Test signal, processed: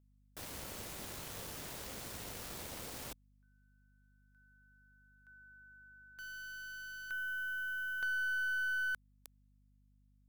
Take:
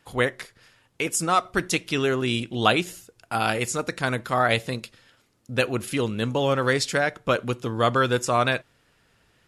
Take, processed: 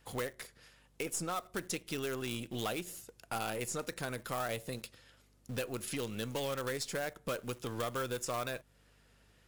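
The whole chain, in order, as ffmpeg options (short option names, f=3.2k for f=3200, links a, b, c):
-filter_complex "[0:a]highpass=44,asplit=2[a][b];[b]acrusher=bits=4:dc=4:mix=0:aa=0.000001,volume=-7dB[c];[a][c]amix=inputs=2:normalize=0,acrossover=split=1200|7800[d][e][f];[d]acompressor=threshold=-31dB:ratio=4[g];[e]acompressor=threshold=-35dB:ratio=4[h];[f]acompressor=threshold=-42dB:ratio=4[i];[g][h][i]amix=inputs=3:normalize=0,aeval=exprs='val(0)+0.000891*(sin(2*PI*50*n/s)+sin(2*PI*2*50*n/s)/2+sin(2*PI*3*50*n/s)/3+sin(2*PI*4*50*n/s)/4+sin(2*PI*5*50*n/s)/5)':c=same,equalizer=f=510:w=1.9:g=3.5,asoftclip=type=tanh:threshold=-21.5dB,highshelf=f=5k:g=5.5,volume=-6.5dB"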